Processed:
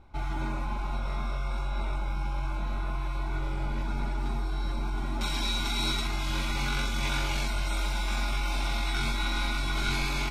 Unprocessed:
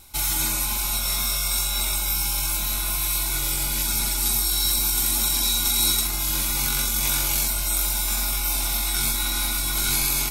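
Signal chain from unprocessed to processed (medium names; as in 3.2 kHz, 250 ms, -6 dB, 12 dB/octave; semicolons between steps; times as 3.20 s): low-pass 1.2 kHz 12 dB/octave, from 5.21 s 2.9 kHz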